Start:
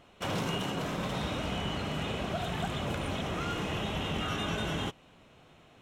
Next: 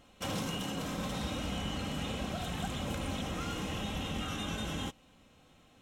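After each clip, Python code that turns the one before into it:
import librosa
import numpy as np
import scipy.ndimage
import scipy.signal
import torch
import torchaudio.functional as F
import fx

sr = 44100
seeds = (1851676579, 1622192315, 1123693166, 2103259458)

y = fx.rider(x, sr, range_db=10, speed_s=0.5)
y = fx.bass_treble(y, sr, bass_db=5, treble_db=8)
y = y + 0.4 * np.pad(y, (int(3.8 * sr / 1000.0), 0))[:len(y)]
y = y * 10.0 ** (-5.5 / 20.0)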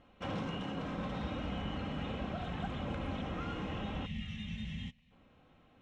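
y = fx.spec_box(x, sr, start_s=4.06, length_s=1.05, low_hz=240.0, high_hz=1700.0, gain_db=-21)
y = fx.dmg_crackle(y, sr, seeds[0], per_s=270.0, level_db=-64.0)
y = scipy.signal.sosfilt(scipy.signal.butter(2, 2400.0, 'lowpass', fs=sr, output='sos'), y)
y = y * 10.0 ** (-1.5 / 20.0)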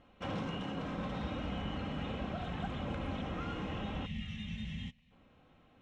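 y = x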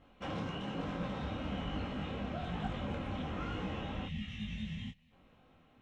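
y = fx.detune_double(x, sr, cents=39)
y = y * 10.0 ** (3.5 / 20.0)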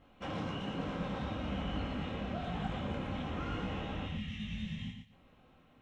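y = fx.echo_feedback(x, sr, ms=116, feedback_pct=18, wet_db=-6.5)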